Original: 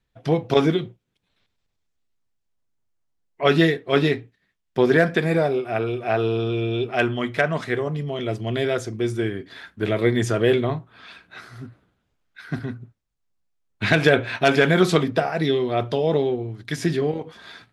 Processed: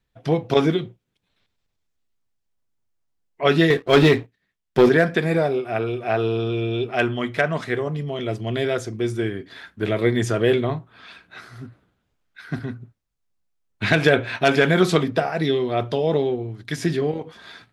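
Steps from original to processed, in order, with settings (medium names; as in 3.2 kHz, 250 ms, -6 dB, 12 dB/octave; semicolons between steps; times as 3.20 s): 3.70–4.89 s: waveshaping leveller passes 2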